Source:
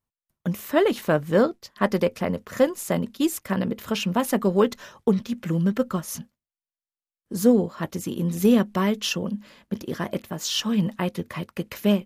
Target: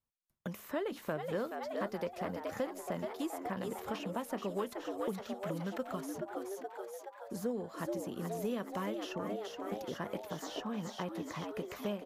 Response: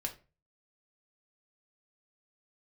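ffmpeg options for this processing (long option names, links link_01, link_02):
-filter_complex "[0:a]asplit=8[link_01][link_02][link_03][link_04][link_05][link_06][link_07][link_08];[link_02]adelay=424,afreqshift=100,volume=-9dB[link_09];[link_03]adelay=848,afreqshift=200,volume=-14dB[link_10];[link_04]adelay=1272,afreqshift=300,volume=-19.1dB[link_11];[link_05]adelay=1696,afreqshift=400,volume=-24.1dB[link_12];[link_06]adelay=2120,afreqshift=500,volume=-29.1dB[link_13];[link_07]adelay=2544,afreqshift=600,volume=-34.2dB[link_14];[link_08]adelay=2968,afreqshift=700,volume=-39.2dB[link_15];[link_01][link_09][link_10][link_11][link_12][link_13][link_14][link_15]amix=inputs=8:normalize=0,acrossover=split=460|1700[link_16][link_17][link_18];[link_16]acompressor=threshold=-35dB:ratio=4[link_19];[link_17]acompressor=threshold=-32dB:ratio=4[link_20];[link_18]acompressor=threshold=-46dB:ratio=4[link_21];[link_19][link_20][link_21]amix=inputs=3:normalize=0,volume=-6.5dB"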